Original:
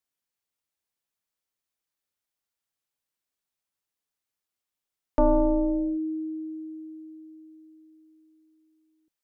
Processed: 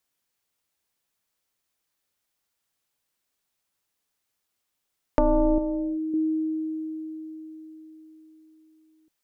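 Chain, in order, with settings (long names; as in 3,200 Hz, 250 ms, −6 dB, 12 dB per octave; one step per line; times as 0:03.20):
downward compressor 6 to 1, threshold −27 dBFS, peak gain reduction 9.5 dB
0:05.58–0:06.14: low-shelf EQ 480 Hz −9.5 dB
level +8 dB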